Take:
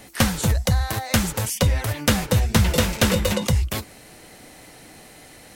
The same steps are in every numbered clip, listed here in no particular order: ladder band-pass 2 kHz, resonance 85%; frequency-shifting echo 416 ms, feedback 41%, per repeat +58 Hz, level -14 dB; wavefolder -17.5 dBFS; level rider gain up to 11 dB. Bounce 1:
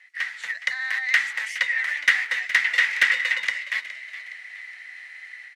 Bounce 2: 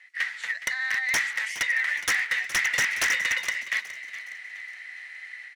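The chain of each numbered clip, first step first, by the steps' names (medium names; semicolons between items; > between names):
ladder band-pass > wavefolder > level rider > frequency-shifting echo; ladder band-pass > level rider > wavefolder > frequency-shifting echo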